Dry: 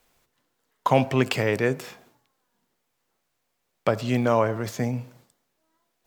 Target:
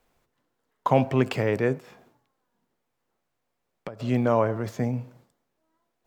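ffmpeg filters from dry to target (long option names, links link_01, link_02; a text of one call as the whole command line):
ffmpeg -i in.wav -filter_complex "[0:a]highshelf=frequency=2000:gain=-9.5,asplit=3[link_01][link_02][link_03];[link_01]afade=type=out:start_time=1.78:duration=0.02[link_04];[link_02]acompressor=threshold=-34dB:ratio=20,afade=type=in:start_time=1.78:duration=0.02,afade=type=out:start_time=3.99:duration=0.02[link_05];[link_03]afade=type=in:start_time=3.99:duration=0.02[link_06];[link_04][link_05][link_06]amix=inputs=3:normalize=0" out.wav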